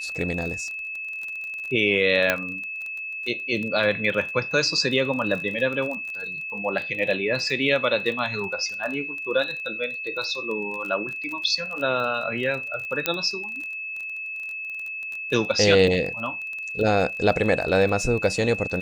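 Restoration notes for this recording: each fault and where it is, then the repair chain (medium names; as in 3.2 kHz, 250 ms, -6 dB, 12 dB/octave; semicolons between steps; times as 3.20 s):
crackle 24 per s -30 dBFS
whine 2.6 kHz -30 dBFS
2.30 s: pop -5 dBFS
13.06 s: pop -5 dBFS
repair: de-click; band-stop 2.6 kHz, Q 30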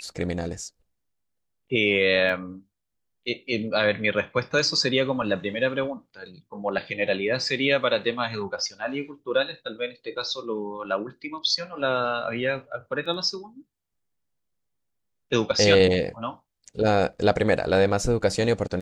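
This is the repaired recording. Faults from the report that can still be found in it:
2.30 s: pop
13.06 s: pop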